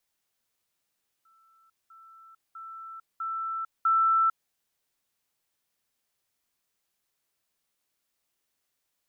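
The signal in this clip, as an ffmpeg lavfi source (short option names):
-f lavfi -i "aevalsrc='pow(10,(-59.5+10*floor(t/0.65))/20)*sin(2*PI*1330*t)*clip(min(mod(t,0.65),0.45-mod(t,0.65))/0.005,0,1)':d=3.25:s=44100"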